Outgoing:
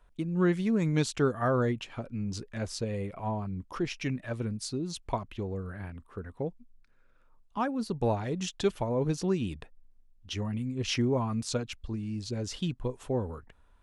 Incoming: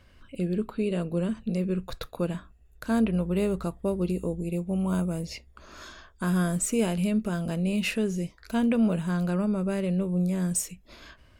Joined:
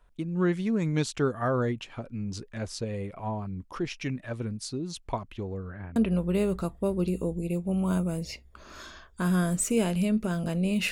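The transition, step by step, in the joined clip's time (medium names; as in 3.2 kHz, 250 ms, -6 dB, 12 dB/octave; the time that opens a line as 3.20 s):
outgoing
5.54–5.96 s: low-pass 6.6 kHz -> 1.4 kHz
5.96 s: go over to incoming from 2.98 s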